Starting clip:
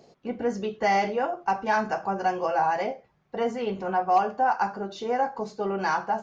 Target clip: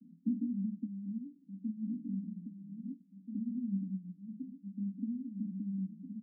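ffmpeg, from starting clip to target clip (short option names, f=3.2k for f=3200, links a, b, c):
-filter_complex "[0:a]acompressor=threshold=-36dB:ratio=6,asuperpass=centerf=220:order=20:qfactor=1.7,asplit=2[a][b];[b]adelay=1633,volume=-7dB,highshelf=f=4k:g=-36.7[c];[a][c]amix=inputs=2:normalize=0,volume=9dB"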